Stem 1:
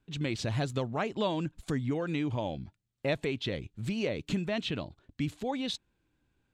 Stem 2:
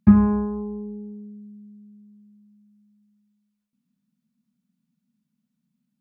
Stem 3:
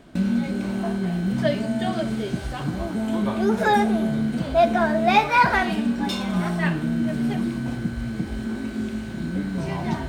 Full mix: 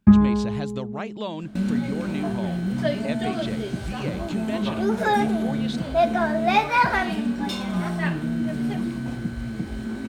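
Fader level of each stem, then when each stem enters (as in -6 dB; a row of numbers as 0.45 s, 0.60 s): -1.0 dB, 0.0 dB, -2.0 dB; 0.00 s, 0.00 s, 1.40 s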